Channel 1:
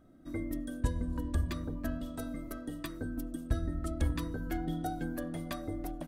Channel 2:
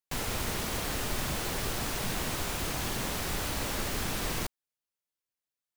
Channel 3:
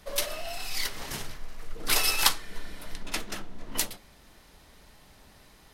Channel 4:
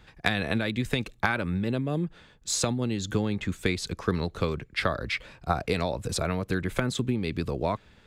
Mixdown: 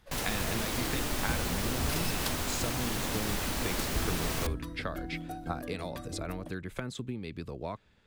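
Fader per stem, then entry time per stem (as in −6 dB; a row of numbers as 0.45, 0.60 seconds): −4.5, −0.5, −14.5, −10.0 decibels; 0.45, 0.00, 0.00, 0.00 seconds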